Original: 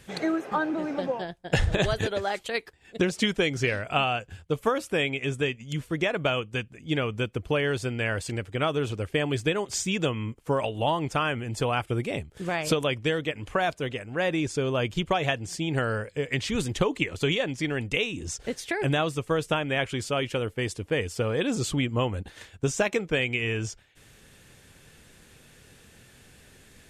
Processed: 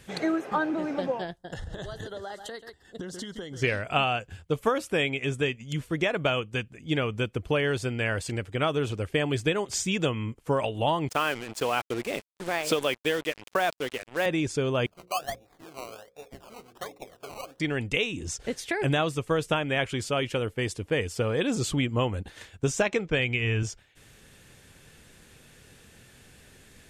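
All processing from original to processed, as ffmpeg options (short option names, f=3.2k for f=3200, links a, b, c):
-filter_complex "[0:a]asettb=1/sr,asplit=3[a][b][c];[a]atrim=end=1.364[d];[b]atrim=start=1.36:end=3.62,asetpts=PTS-STARTPTS,afade=t=in:d=0.004:c=qsin,afade=t=out:st=2.256:d=0.004:c=qsin,aecho=1:1:134:0.141,atrim=end_sample=99666,acompressor=threshold=-34dB:ratio=6:attack=3.2:release=140:knee=1:detection=peak,asuperstop=centerf=2400:order=4:qfactor=2.4[e];[c]atrim=start=3.616[f];[d][e]acrossfade=d=0.004:c1=hsin:c2=qsin[g];[g][f]acrossfade=d=0.004:c1=qsin:c2=hsin,asettb=1/sr,asplit=3[h][i][j];[h]atrim=end=11.094[k];[i]atrim=start=11.09:end=14.26,asetpts=PTS-STARTPTS,afade=t=in:d=0.004:c=qsin,afade=t=out:st=3.166:d=0.004:c=qsin,highpass=260,acrusher=bits=5:mix=0:aa=0.5[l];[j]atrim=start=14.256[m];[k][l]acrossfade=d=0.004:c1=hsin:c2=qsin[n];[n][m]acrossfade=d=0.004:c1=qsin:c2=hsin,asettb=1/sr,asplit=3[o][p][q];[o]atrim=end=14.864[r];[p]atrim=start=14.86:end=17.6,asetpts=PTS-STARTPTS,afade=t=in:d=0.004:c=qsin,afade=t=out:st=2.736:d=0.004:c=qsin,asplit=3[s][t][u];[s]bandpass=f=730:t=q:w=8,volume=0dB[v];[t]bandpass=f=1.09k:t=q:w=8,volume=-6dB[w];[u]bandpass=f=2.44k:t=q:w=8,volume=-9dB[x];[v][w][x]amix=inputs=3:normalize=0,acrusher=samples=20:mix=1:aa=0.000001:lfo=1:lforange=12:lforate=1.3,bandreject=f=60:t=h:w=6,bandreject=f=120:t=h:w=6,bandreject=f=180:t=h:w=6,bandreject=f=240:t=h:w=6,bandreject=f=300:t=h:w=6,bandreject=f=360:t=h:w=6,bandreject=f=420:t=h:w=6,bandreject=f=480:t=h:w=6,bandreject=f=540:t=h:w=6[y];[q]atrim=start=17.596[z];[r][y]acrossfade=d=0.004:c1=hsin:c2=qsin[aa];[aa][z]acrossfade=d=0.004:c1=qsin:c2=hsin,asettb=1/sr,asplit=3[ab][ac][ad];[ab]atrim=end=22.824[ae];[ac]atrim=start=22.82:end=23.63,asetpts=PTS-STARTPTS,afade=t=in:d=0.004:c=qsin,afade=t=out:st=0.806:d=0.004:c=qsin,agate=range=-33dB:threshold=-43dB:ratio=3:release=100:detection=peak,lowpass=6.4k,asubboost=boost=7:cutoff=180[af];[ad]atrim=start=23.626[ag];[ae][af]acrossfade=d=0.004:c1=hsin:c2=qsin[ah];[ah][ag]acrossfade=d=0.004:c1=qsin:c2=hsin"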